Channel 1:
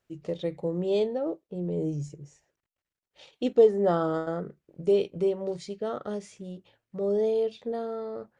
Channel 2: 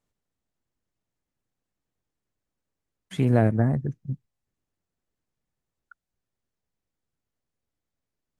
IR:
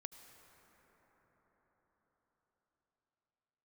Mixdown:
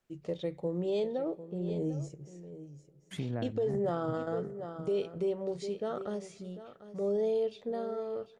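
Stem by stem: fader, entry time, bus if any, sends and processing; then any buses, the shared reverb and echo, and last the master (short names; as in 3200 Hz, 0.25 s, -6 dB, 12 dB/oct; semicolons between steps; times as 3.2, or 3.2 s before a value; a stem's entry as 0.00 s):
-4.5 dB, 0.00 s, send -14 dB, echo send -13 dB, dry
-5.0 dB, 0.00 s, no send, echo send -14 dB, treble ducked by the level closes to 2800 Hz; compressor 2.5:1, threshold -32 dBFS, peak gain reduction 11.5 dB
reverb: on, RT60 5.8 s, pre-delay 68 ms
echo: echo 0.747 s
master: limiter -24.5 dBFS, peak gain reduction 11.5 dB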